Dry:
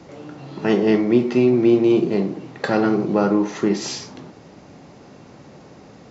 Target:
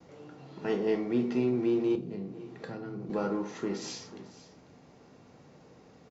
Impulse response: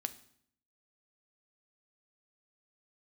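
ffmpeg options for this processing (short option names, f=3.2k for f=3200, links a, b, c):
-filter_complex "[0:a]aecho=1:1:494:0.15,asettb=1/sr,asplit=3[a][b][c];[a]atrim=end=1.954[d];[b]atrim=start=1.95:end=3.1,asetpts=PTS-STARTPTS,afade=t=in:d=0.004:c=qsin,afade=t=out:st=1.146:d=0.004:c=qsin,acrossover=split=220[e][f];[f]acompressor=threshold=-30dB:ratio=6[g];[e][g]amix=inputs=2:normalize=0[h];[c]atrim=start=3.096[i];[d][h]acrossfade=d=0.004:c1=hsin:c2=qsin[j];[j][i]acrossfade=d=0.004:c1=qsin:c2=hsin,asplit=2[k][l];[l]volume=19dB,asoftclip=hard,volume=-19dB,volume=-12dB[m];[k][m]amix=inputs=2:normalize=0,agate=range=-33dB:threshold=-45dB:ratio=3:detection=peak[n];[1:a]atrim=start_sample=2205,asetrate=83790,aresample=44100[o];[n][o]afir=irnorm=-1:irlink=0,volume=-7.5dB"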